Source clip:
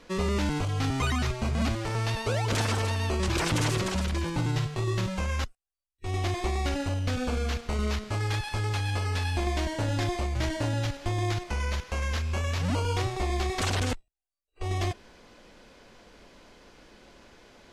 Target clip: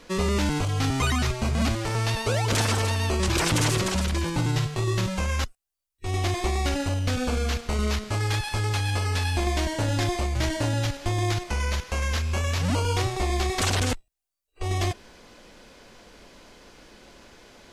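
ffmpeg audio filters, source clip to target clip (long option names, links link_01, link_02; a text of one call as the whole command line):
ffmpeg -i in.wav -af "highshelf=frequency=5600:gain=6,volume=3dB" out.wav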